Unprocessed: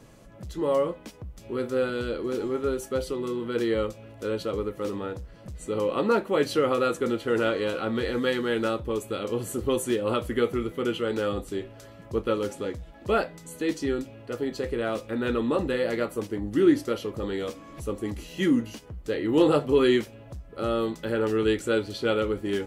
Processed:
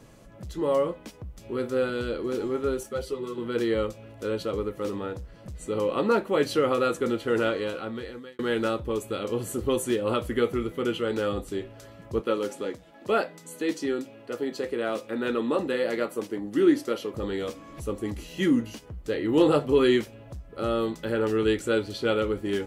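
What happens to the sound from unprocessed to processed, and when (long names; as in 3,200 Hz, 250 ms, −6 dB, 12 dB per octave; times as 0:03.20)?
0:02.83–0:03.38: string-ensemble chorus
0:07.41–0:08.39: fade out
0:12.20–0:17.14: high-pass filter 200 Hz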